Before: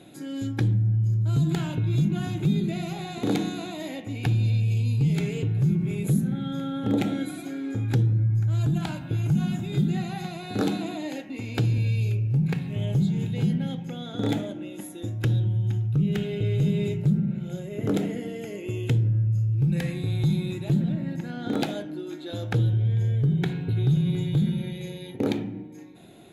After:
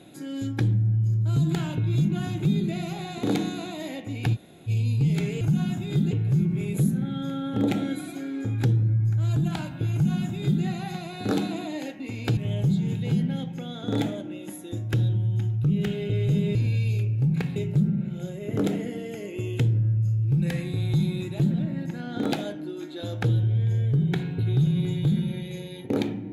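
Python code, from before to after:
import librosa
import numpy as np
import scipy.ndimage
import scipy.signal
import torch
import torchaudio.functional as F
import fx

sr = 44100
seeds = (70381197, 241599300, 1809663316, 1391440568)

y = fx.edit(x, sr, fx.room_tone_fill(start_s=4.35, length_s=0.33, crossfade_s=0.04),
    fx.duplicate(start_s=9.23, length_s=0.7, to_s=5.41),
    fx.move(start_s=11.67, length_s=1.01, to_s=16.86), tone=tone)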